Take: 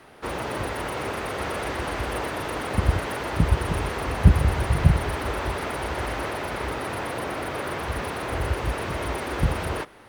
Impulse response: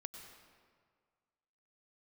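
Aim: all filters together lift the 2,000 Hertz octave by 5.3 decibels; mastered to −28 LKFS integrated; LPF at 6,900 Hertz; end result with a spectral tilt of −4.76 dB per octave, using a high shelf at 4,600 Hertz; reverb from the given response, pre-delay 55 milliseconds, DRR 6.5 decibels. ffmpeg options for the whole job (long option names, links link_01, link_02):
-filter_complex "[0:a]lowpass=6900,equalizer=frequency=2000:width_type=o:gain=7.5,highshelf=frequency=4600:gain=-5,asplit=2[link_01][link_02];[1:a]atrim=start_sample=2205,adelay=55[link_03];[link_02][link_03]afir=irnorm=-1:irlink=0,volume=-2.5dB[link_04];[link_01][link_04]amix=inputs=2:normalize=0,volume=-3.5dB"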